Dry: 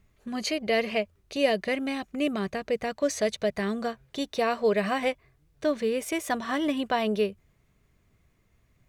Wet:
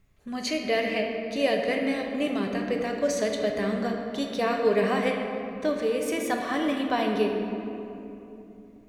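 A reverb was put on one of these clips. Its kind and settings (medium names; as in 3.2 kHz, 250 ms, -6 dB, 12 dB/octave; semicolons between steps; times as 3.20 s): simulated room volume 140 m³, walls hard, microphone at 0.36 m; trim -1.5 dB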